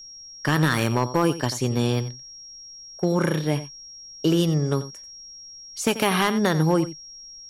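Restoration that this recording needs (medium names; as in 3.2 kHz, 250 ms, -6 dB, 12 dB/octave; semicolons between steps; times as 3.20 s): clip repair -11.5 dBFS; band-stop 5.6 kHz, Q 30; expander -35 dBFS, range -21 dB; inverse comb 89 ms -14 dB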